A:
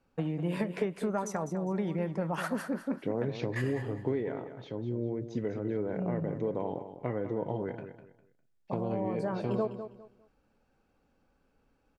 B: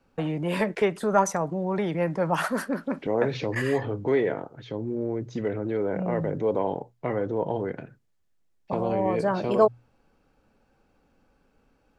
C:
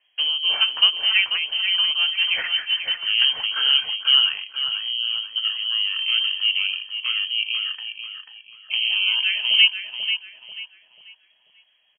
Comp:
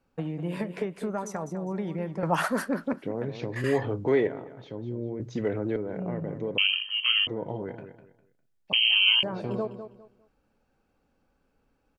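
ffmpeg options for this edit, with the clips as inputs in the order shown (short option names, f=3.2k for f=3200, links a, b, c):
-filter_complex "[1:a]asplit=3[a][b][c];[2:a]asplit=2[d][e];[0:a]asplit=6[f][g][h][i][j][k];[f]atrim=end=2.232[l];[a]atrim=start=2.228:end=2.932[m];[g]atrim=start=2.928:end=3.642[n];[b]atrim=start=3.638:end=4.272[o];[h]atrim=start=4.268:end=5.202[p];[c]atrim=start=5.198:end=5.762[q];[i]atrim=start=5.758:end=6.582[r];[d]atrim=start=6.578:end=7.272[s];[j]atrim=start=7.268:end=8.732[t];[e]atrim=start=8.728:end=9.232[u];[k]atrim=start=9.228[v];[l][m]acrossfade=d=0.004:c1=hsin:c2=hsin[w];[w][n]acrossfade=d=0.004:c1=hsin:c2=hsin[x];[x][o]acrossfade=d=0.004:c1=hsin:c2=hsin[y];[y][p]acrossfade=d=0.004:c1=hsin:c2=hsin[z];[z][q]acrossfade=d=0.004:c1=hsin:c2=hsin[aa];[aa][r]acrossfade=d=0.004:c1=hsin:c2=hsin[ab];[ab][s]acrossfade=d=0.004:c1=hsin:c2=hsin[ac];[ac][t]acrossfade=d=0.004:c1=hsin:c2=hsin[ad];[ad][u]acrossfade=d=0.004:c1=hsin:c2=hsin[ae];[ae][v]acrossfade=d=0.004:c1=hsin:c2=hsin"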